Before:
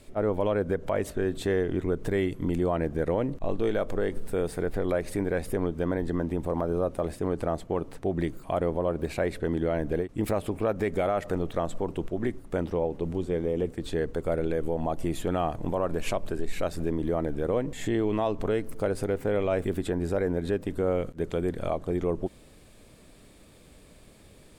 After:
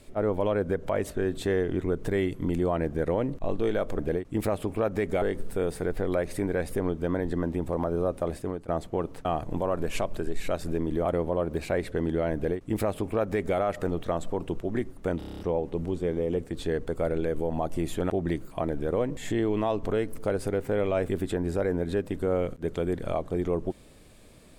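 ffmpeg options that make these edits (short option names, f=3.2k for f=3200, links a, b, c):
-filter_complex "[0:a]asplit=15[a][b][c][d][e][f][g][h][i][j][k][l][m][n][o];[a]atrim=end=3.992[p];[b]atrim=start=9.828:end=11.062[q];[c]atrim=start=3.988:end=7.45,asetpts=PTS-STARTPTS,afade=t=out:st=3.042:d=0.42:c=qsin:silence=0.105925[r];[d]atrim=start=7.45:end=8.022,asetpts=PTS-STARTPTS,afade=t=in:d=0.004:c=hsin:silence=0.105925[s];[e]atrim=start=15.368:end=17.172[t];[f]atrim=start=8.528:end=12.692[u];[g]atrim=start=12.658:end=12.692[v];[h]atrim=start=12.658:end=12.692[w];[i]atrim=start=12.658:end=12.692[x];[j]atrim=start=12.658:end=12.692[y];[k]atrim=start=12.658:end=12.692[z];[l]atrim=start=12.658:end=12.692[aa];[m]atrim=start=12.658:end=15.372[ab];[n]atrim=start=8.018:end=8.532[ac];[o]atrim=start=17.168[ad];[p][q]acrossfade=d=0.004:c1=hsin:c2=hsin[ae];[r][s]concat=n=2:v=0:a=1[af];[ae][af]acrossfade=d=0.004:c1=hsin:c2=hsin[ag];[ag][t]acrossfade=d=0.004:c1=hsin:c2=hsin[ah];[ah][u]acrossfade=d=0.004:c1=hsin:c2=hsin[ai];[ai][v]acrossfade=d=0.004:c1=hsin:c2=hsin[aj];[aj][w]acrossfade=d=0.004:c1=hsin:c2=hsin[ak];[ak][x]acrossfade=d=0.004:c1=hsin:c2=hsin[al];[al][y]acrossfade=d=0.004:c1=hsin:c2=hsin[am];[am][z]acrossfade=d=0.004:c1=hsin:c2=hsin[an];[an][aa]acrossfade=d=0.004:c1=hsin:c2=hsin[ao];[ao][ab]acrossfade=d=0.004:c1=hsin:c2=hsin[ap];[ap][ac]acrossfade=d=0.004:c1=hsin:c2=hsin[aq];[aq][ad]acrossfade=d=0.004:c1=hsin:c2=hsin"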